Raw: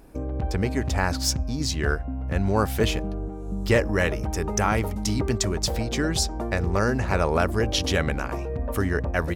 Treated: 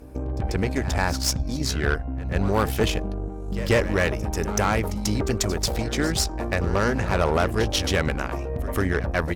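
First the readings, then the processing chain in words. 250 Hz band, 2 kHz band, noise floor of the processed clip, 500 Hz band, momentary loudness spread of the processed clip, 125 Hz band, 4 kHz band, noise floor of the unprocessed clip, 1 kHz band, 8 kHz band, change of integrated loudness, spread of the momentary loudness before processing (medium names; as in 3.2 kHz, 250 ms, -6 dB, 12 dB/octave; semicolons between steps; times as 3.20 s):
+0.5 dB, +1.0 dB, -31 dBFS, +1.0 dB, 7 LU, 0.0 dB, +0.5 dB, -32 dBFS, +1.0 dB, +0.5 dB, +0.5 dB, 7 LU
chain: Chebyshev shaper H 6 -19 dB, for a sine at -8.5 dBFS; reverse echo 140 ms -14.5 dB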